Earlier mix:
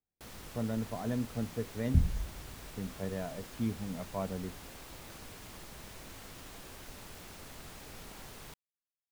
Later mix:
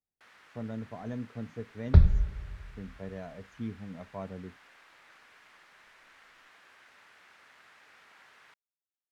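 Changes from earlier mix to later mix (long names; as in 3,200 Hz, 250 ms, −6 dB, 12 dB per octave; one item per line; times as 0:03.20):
speech −3.5 dB
first sound: add resonant band-pass 1,700 Hz, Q 1.7
second sound: remove transistor ladder low-pass 300 Hz, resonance 50%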